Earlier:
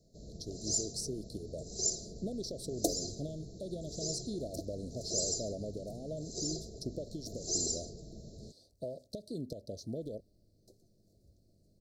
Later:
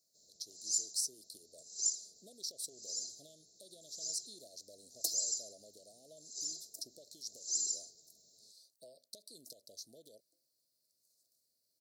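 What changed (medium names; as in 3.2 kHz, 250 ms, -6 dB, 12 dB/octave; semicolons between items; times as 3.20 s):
speech +5.5 dB; second sound: entry +2.20 s; master: add differentiator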